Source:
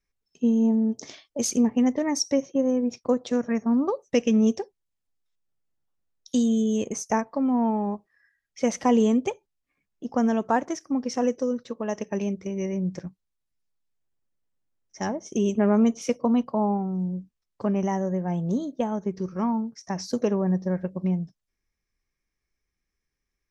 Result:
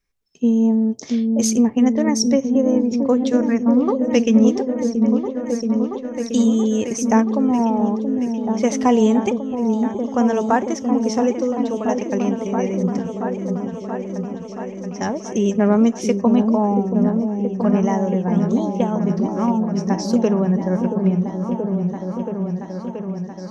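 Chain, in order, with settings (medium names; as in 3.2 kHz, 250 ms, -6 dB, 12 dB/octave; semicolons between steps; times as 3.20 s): delay with an opening low-pass 678 ms, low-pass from 400 Hz, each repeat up 1 oct, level -3 dB; trim +5 dB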